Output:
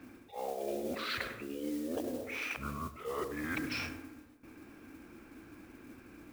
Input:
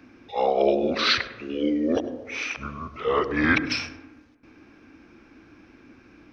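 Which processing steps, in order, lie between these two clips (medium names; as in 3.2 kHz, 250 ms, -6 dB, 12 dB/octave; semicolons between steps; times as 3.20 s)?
treble shelf 4.1 kHz -10.5 dB; reverse; compression 8:1, threshold -33 dBFS, peak gain reduction 17 dB; reverse; modulation noise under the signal 17 dB; trim -1.5 dB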